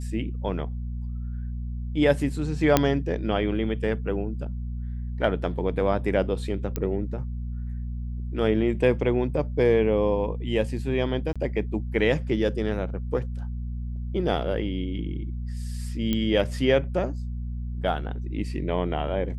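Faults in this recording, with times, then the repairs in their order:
hum 60 Hz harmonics 4 -31 dBFS
2.77 pop -4 dBFS
6.76 pop -14 dBFS
11.33–11.36 gap 26 ms
16.13 pop -13 dBFS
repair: de-click; de-hum 60 Hz, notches 4; interpolate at 11.33, 26 ms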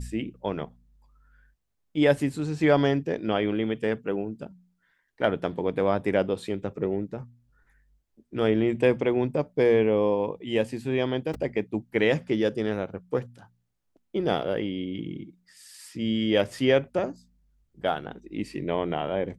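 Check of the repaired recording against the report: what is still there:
none

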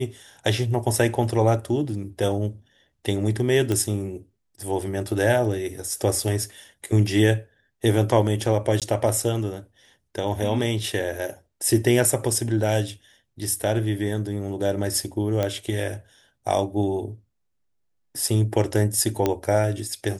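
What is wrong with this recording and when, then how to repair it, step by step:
3.72 pop -12 dBFS
8.8–8.82 gap 17 ms
15.43 pop -11 dBFS
19.26 pop -8 dBFS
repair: de-click; interpolate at 8.8, 17 ms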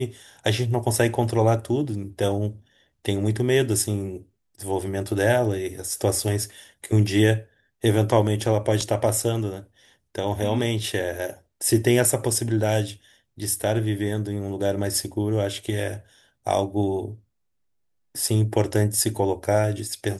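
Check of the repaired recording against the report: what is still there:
none

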